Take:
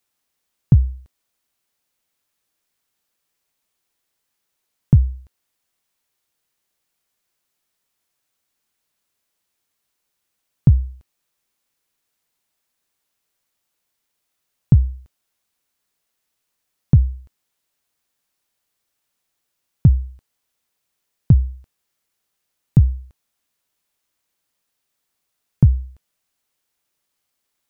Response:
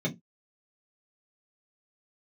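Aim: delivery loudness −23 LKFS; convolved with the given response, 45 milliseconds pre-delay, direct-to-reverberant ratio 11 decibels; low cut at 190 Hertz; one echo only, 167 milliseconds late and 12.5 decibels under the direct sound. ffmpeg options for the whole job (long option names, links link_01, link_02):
-filter_complex "[0:a]highpass=190,aecho=1:1:167:0.237,asplit=2[link_01][link_02];[1:a]atrim=start_sample=2205,adelay=45[link_03];[link_02][link_03]afir=irnorm=-1:irlink=0,volume=-18dB[link_04];[link_01][link_04]amix=inputs=2:normalize=0,volume=0.5dB"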